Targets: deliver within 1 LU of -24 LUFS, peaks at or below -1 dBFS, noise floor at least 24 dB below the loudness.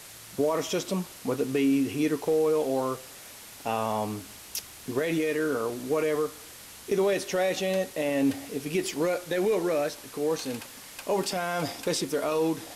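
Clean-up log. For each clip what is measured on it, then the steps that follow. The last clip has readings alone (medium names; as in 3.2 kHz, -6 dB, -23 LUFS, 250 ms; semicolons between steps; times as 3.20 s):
noise floor -46 dBFS; noise floor target -53 dBFS; loudness -28.5 LUFS; peak level -14.5 dBFS; loudness target -24.0 LUFS
-> noise print and reduce 7 dB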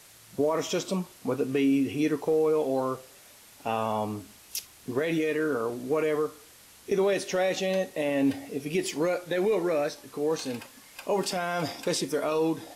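noise floor -53 dBFS; loudness -28.5 LUFS; peak level -15.0 dBFS; loudness target -24.0 LUFS
-> trim +4.5 dB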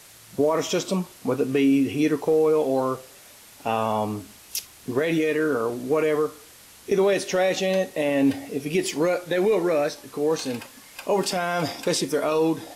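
loudness -24.0 LUFS; peak level -10.5 dBFS; noise floor -49 dBFS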